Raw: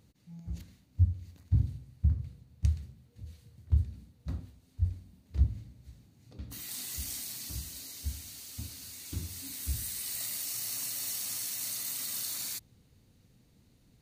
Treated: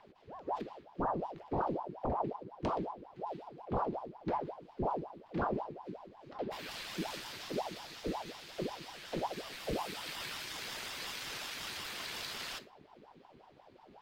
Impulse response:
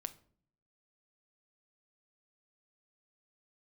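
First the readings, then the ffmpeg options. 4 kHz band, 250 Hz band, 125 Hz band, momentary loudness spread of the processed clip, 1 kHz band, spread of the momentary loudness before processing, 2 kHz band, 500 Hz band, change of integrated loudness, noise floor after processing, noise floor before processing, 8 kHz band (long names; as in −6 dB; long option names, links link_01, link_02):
0.0 dB, +6.5 dB, −14.5 dB, 10 LU, +23.0 dB, 15 LU, +7.0 dB, +22.5 dB, −5.0 dB, −61 dBFS, −65 dBFS, −13.5 dB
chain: -filter_complex "[0:a]acrossover=split=530 3500:gain=0.0708 1 0.0631[link_01][link_02][link_03];[link_01][link_02][link_03]amix=inputs=3:normalize=0,acrossover=split=130[link_04][link_05];[link_04]aeval=exprs='0.0112*sin(PI/2*7.08*val(0)/0.0112)':channel_layout=same[link_06];[link_05]highshelf=frequency=6200:gain=-5[link_07];[link_06][link_07]amix=inputs=2:normalize=0[link_08];[1:a]atrim=start_sample=2205[link_09];[link_08][link_09]afir=irnorm=-1:irlink=0,aeval=exprs='val(0)*sin(2*PI*590*n/s+590*0.6/5.5*sin(2*PI*5.5*n/s))':channel_layout=same,volume=15dB"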